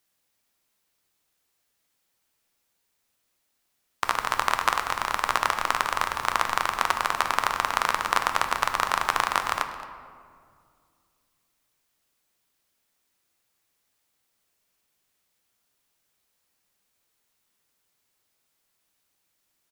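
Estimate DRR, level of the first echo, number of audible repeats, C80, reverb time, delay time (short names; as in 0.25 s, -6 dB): 6.0 dB, -17.5 dB, 1, 9.5 dB, 2.2 s, 0.22 s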